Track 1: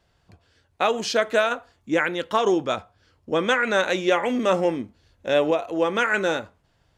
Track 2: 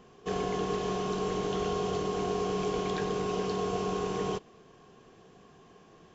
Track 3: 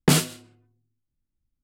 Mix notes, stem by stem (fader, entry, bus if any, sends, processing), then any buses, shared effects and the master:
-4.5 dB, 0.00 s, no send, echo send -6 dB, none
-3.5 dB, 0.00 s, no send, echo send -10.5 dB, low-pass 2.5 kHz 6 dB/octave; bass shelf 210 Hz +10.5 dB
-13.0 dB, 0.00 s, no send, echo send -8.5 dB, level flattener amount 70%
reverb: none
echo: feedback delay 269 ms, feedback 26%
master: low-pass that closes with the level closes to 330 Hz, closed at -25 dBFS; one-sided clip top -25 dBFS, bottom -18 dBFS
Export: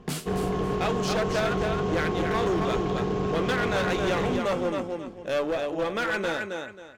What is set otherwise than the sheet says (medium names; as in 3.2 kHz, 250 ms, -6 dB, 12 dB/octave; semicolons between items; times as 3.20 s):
stem 2 -3.5 dB -> +2.5 dB; stem 3: missing level flattener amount 70%; master: missing low-pass that closes with the level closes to 330 Hz, closed at -25 dBFS